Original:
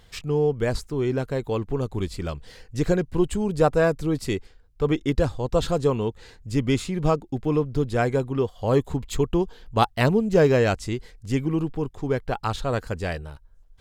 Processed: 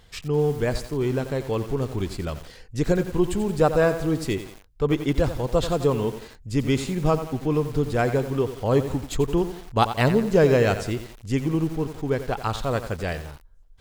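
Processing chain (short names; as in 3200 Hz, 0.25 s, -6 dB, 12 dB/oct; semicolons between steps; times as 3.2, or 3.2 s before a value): lo-fi delay 88 ms, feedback 55%, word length 6-bit, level -10.5 dB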